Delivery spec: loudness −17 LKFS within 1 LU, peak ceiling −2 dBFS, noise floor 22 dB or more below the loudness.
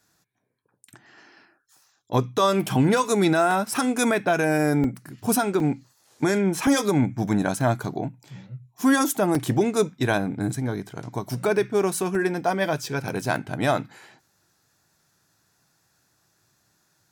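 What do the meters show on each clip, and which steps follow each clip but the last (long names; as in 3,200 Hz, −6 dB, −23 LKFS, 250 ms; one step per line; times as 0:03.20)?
number of dropouts 8; longest dropout 2.3 ms; integrated loudness −23.5 LKFS; sample peak −10.0 dBFS; target loudness −17.0 LKFS
→ repair the gap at 0:03.51/0:04.84/0:05.60/0:06.67/0:07.61/0:09.35/0:12.15/0:13.36, 2.3 ms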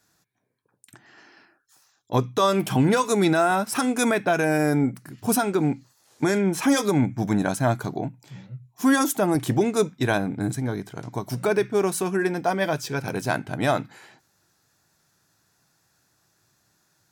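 number of dropouts 0; integrated loudness −23.5 LKFS; sample peak −10.0 dBFS; target loudness −17.0 LKFS
→ level +6.5 dB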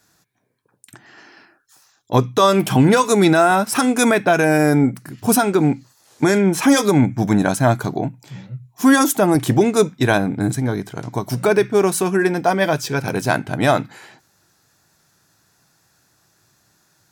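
integrated loudness −17.0 LKFS; sample peak −3.5 dBFS; background noise floor −62 dBFS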